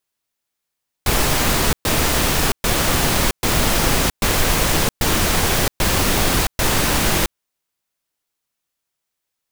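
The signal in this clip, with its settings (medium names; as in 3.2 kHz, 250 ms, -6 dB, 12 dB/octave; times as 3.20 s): noise bursts pink, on 0.67 s, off 0.12 s, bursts 8, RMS -17 dBFS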